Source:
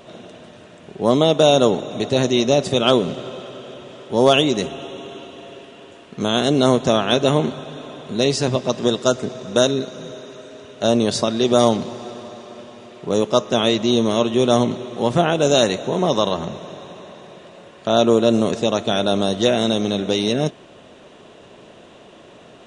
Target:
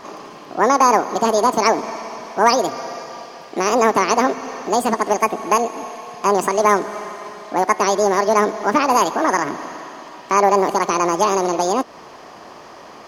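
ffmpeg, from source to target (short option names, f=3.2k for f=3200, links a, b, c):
-filter_complex "[0:a]lowpass=f=2.3k:p=1,asplit=2[a][b];[b]acompressor=threshold=-29dB:ratio=6,volume=-1dB[c];[a][c]amix=inputs=2:normalize=0,asetrate=76440,aresample=44100"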